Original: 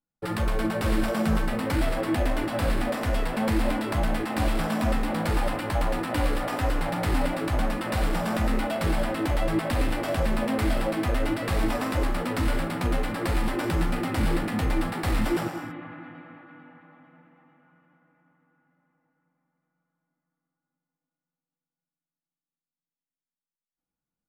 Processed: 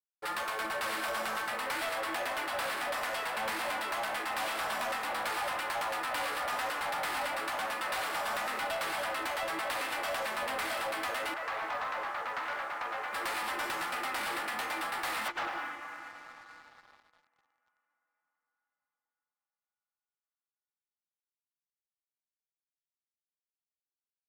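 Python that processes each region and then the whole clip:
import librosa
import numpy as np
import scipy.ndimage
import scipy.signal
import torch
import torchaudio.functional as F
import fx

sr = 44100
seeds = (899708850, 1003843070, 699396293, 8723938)

y = fx.chain(x, sr, fx.law_mismatch(coded='A'),
    fx.bandpass_edges(low_hz=450.0, high_hz=2000.0), at=(11.34, 13.13))
y = fx.chain(y, sr, fx.lowpass(hz=3900.0, slope=24),
    fx.over_compress(threshold_db=-28.0, ratio=-0.5), at=(15.28, 15.75))
y = scipy.signal.sosfilt(scipy.signal.cheby1(2, 1.0, 990.0, 'highpass', fs=sr, output='sos'), y)
y = fx.leveller(y, sr, passes=3)
y = y * 10.0 ** (-9.0 / 20.0)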